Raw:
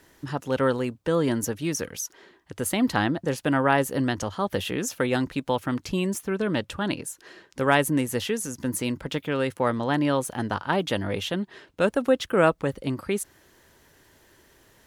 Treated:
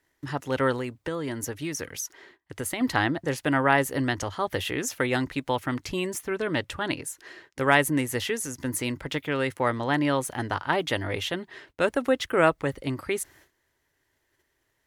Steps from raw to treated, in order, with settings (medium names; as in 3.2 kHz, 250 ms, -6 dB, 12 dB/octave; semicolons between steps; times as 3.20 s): gate -54 dBFS, range -17 dB; graphic EQ with 31 bands 200 Hz -12 dB, 500 Hz -3 dB, 2 kHz +6 dB; 0.77–2.81 s: compression, threshold -28 dBFS, peak gain reduction 7 dB